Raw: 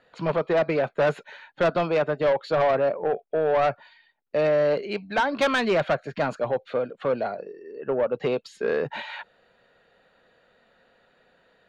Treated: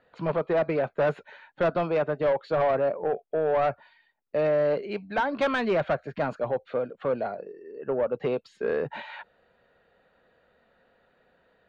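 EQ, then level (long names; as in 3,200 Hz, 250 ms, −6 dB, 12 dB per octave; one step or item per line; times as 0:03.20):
low-pass filter 2,100 Hz 6 dB per octave
parametric band 70 Hz +7.5 dB 0.37 octaves
−2.0 dB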